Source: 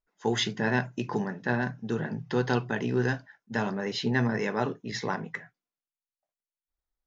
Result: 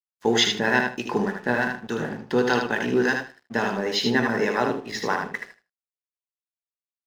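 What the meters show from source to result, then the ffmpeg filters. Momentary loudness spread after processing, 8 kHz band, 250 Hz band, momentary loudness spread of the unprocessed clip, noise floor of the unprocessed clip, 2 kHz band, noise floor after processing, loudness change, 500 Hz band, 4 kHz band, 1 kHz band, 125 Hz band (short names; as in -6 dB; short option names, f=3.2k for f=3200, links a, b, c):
9 LU, n/a, +4.0 dB, 7 LU, under -85 dBFS, +7.5 dB, under -85 dBFS, +6.0 dB, +6.5 dB, +9.0 dB, +7.0 dB, -3.5 dB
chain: -filter_complex "[0:a]equalizer=f=120:t=o:w=1.2:g=-11,bandreject=f=72.72:t=h:w=4,bandreject=f=145.44:t=h:w=4,bandreject=f=218.16:t=h:w=4,bandreject=f=290.88:t=h:w=4,bandreject=f=363.6:t=h:w=4,bandreject=f=436.32:t=h:w=4,bandreject=f=509.04:t=h:w=4,bandreject=f=581.76:t=h:w=4,bandreject=f=654.48:t=h:w=4,bandreject=f=727.2:t=h:w=4,bandreject=f=799.92:t=h:w=4,bandreject=f=872.64:t=h:w=4,bandreject=f=945.36:t=h:w=4,bandreject=f=1.01808k:t=h:w=4,bandreject=f=1.0908k:t=h:w=4,bandreject=f=1.16352k:t=h:w=4,bandreject=f=1.23624k:t=h:w=4,bandreject=f=1.30896k:t=h:w=4,acrossover=split=740[a][b];[a]aeval=exprs='val(0)*(1-0.5/2+0.5/2*cos(2*PI*3.4*n/s))':c=same[c];[b]aeval=exprs='val(0)*(1-0.5/2-0.5/2*cos(2*PI*3.4*n/s))':c=same[d];[c][d]amix=inputs=2:normalize=0,aeval=exprs='sgn(val(0))*max(abs(val(0))-0.002,0)':c=same,aecho=1:1:77|154|231:0.562|0.101|0.0182,volume=9dB"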